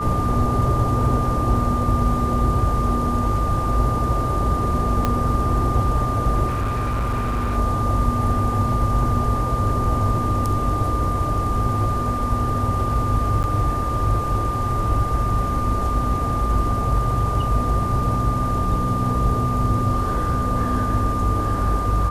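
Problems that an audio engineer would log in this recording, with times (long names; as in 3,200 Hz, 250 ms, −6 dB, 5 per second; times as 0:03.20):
whistle 1,200 Hz −24 dBFS
0:05.05: click −7 dBFS
0:06.47–0:07.57: clipping −19 dBFS
0:13.43–0:13.44: drop-out 9.4 ms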